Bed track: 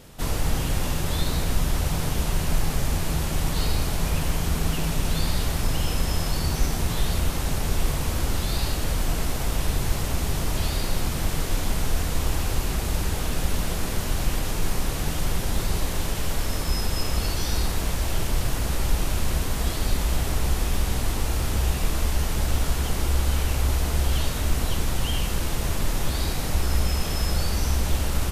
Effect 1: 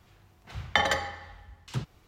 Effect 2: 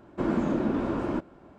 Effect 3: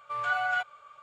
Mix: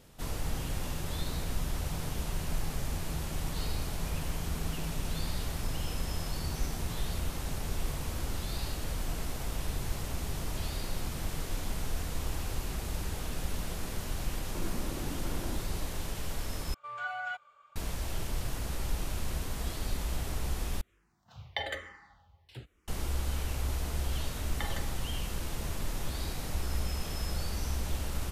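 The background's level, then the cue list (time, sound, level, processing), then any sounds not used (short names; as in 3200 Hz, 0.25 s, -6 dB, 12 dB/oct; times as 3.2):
bed track -10 dB
14.37 add 2 -2 dB + compressor 5:1, threshold -38 dBFS
16.74 replace with 3 -8.5 dB
20.81 replace with 1 -8 dB + endless phaser -1.1 Hz
23.85 add 1 -16.5 dB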